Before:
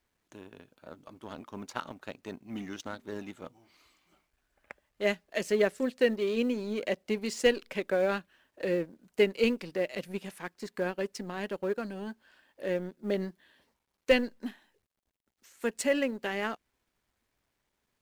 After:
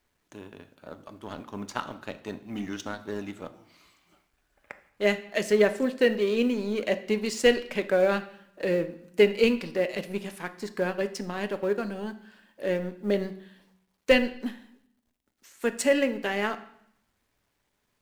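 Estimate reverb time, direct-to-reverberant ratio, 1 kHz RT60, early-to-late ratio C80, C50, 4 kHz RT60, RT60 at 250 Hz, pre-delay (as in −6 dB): 0.70 s, 9.5 dB, 0.75 s, 17.5 dB, 14.0 dB, 0.70 s, 0.95 s, 5 ms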